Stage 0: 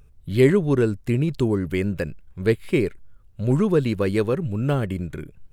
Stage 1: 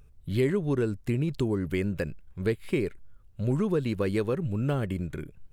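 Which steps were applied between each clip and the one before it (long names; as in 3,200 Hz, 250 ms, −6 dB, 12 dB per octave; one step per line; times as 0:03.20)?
downward compressor 2.5 to 1, threshold −21 dBFS, peak gain reduction 7.5 dB
level −3 dB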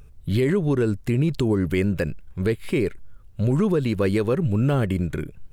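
brickwall limiter −20.5 dBFS, peak gain reduction 6 dB
level +8 dB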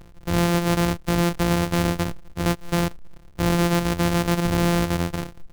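samples sorted by size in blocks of 256 samples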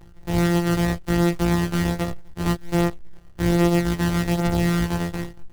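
hollow resonant body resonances 350/810/1,900 Hz, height 6 dB
multi-voice chorus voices 4, 0.42 Hz, delay 17 ms, depth 1.1 ms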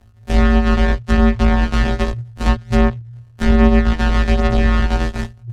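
treble cut that deepens with the level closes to 2,500 Hz, closed at −15 dBFS
frequency shifter −120 Hz
noise gate −29 dBFS, range −10 dB
level +7.5 dB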